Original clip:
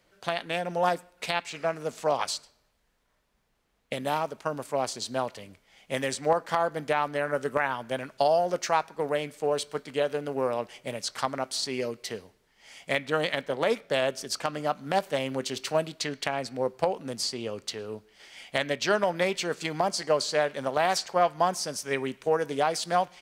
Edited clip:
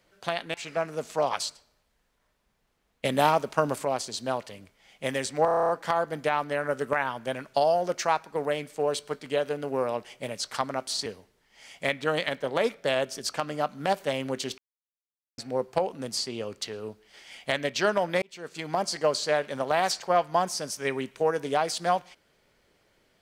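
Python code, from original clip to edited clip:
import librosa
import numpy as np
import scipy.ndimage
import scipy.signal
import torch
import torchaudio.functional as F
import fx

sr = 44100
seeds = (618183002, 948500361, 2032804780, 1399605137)

y = fx.edit(x, sr, fx.cut(start_s=0.54, length_s=0.88),
    fx.clip_gain(start_s=3.93, length_s=0.8, db=6.5),
    fx.stutter(start_s=6.33, slice_s=0.03, count=9),
    fx.cut(start_s=11.7, length_s=0.42),
    fx.silence(start_s=15.64, length_s=0.8),
    fx.fade_in_span(start_s=19.28, length_s=0.63), tone=tone)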